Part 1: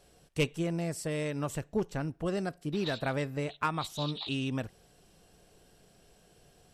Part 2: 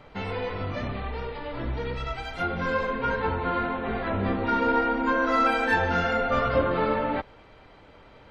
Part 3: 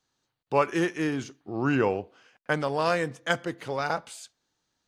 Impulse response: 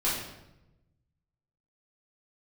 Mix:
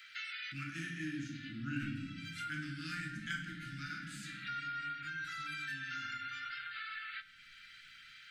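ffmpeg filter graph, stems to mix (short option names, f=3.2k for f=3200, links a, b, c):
-filter_complex "[0:a]adelay=1400,volume=-18.5dB,asplit=2[a][b];[b]volume=-7dB[c];[1:a]highpass=f=1.1k:w=0.5412,highpass=f=1.1k:w=1.3066,highshelf=f=2.7k:g=10.5,alimiter=level_in=2dB:limit=-24dB:level=0:latency=1:release=471,volume=-2dB,volume=-1dB,asplit=2[d][e];[e]volume=-22dB[f];[2:a]volume=-11.5dB,asplit=3[g][h][i];[h]volume=-3.5dB[j];[i]apad=whole_len=366432[k];[d][k]sidechaincompress=threshold=-56dB:ratio=8:attack=16:release=341[l];[3:a]atrim=start_sample=2205[m];[c][f][j]amix=inputs=3:normalize=0[n];[n][m]afir=irnorm=-1:irlink=0[o];[a][l][g][o]amix=inputs=4:normalize=0,asuperstop=centerf=640:order=20:qfactor=0.6,acompressor=threshold=-50dB:ratio=1.5"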